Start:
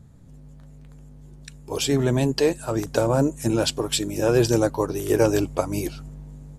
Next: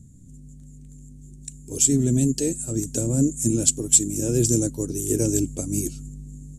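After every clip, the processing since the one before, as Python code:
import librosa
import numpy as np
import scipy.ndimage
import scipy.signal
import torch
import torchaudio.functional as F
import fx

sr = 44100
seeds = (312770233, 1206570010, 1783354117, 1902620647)

y = fx.curve_eq(x, sr, hz=(160.0, 260.0, 1000.0, 2000.0, 3500.0, 5000.0, 7200.0, 14000.0), db=(0, 3, -27, -15, -10, -7, 14, -2))
y = F.gain(torch.from_numpy(y), 1.0).numpy()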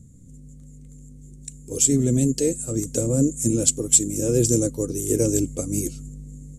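y = fx.small_body(x, sr, hz=(500.0, 1200.0, 2100.0), ring_ms=45, db=11)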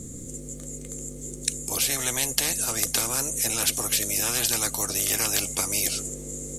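y = fx.spectral_comp(x, sr, ratio=10.0)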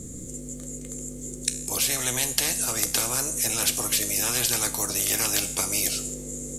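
y = fx.comb_fb(x, sr, f0_hz=62.0, decay_s=0.63, harmonics='all', damping=0.0, mix_pct=60)
y = F.gain(torch.from_numpy(y), 6.0).numpy()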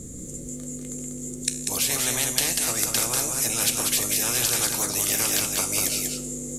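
y = x + 10.0 ** (-4.5 / 20.0) * np.pad(x, (int(192 * sr / 1000.0), 0))[:len(x)]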